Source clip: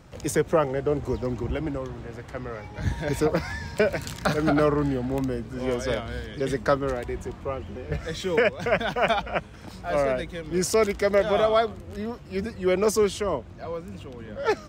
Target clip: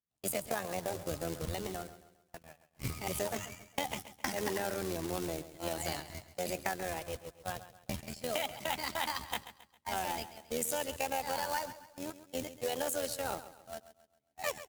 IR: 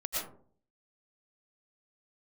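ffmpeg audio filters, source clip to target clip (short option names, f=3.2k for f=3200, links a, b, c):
-filter_complex "[0:a]tremolo=f=61:d=0.667,flanger=delay=0.7:depth=2.9:regen=-82:speed=0.5:shape=triangular,agate=range=-42dB:threshold=-37dB:ratio=16:detection=peak,acrusher=bits=3:mode=log:mix=0:aa=0.000001,asetrate=58866,aresample=44100,atempo=0.749154,highshelf=f=3.8k:g=11.5,acompressor=threshold=-29dB:ratio=6,asplit=2[a][b];[b]aecho=0:1:135|270|405|540:0.2|0.0818|0.0335|0.0138[c];[a][c]amix=inputs=2:normalize=0,volume=-2dB"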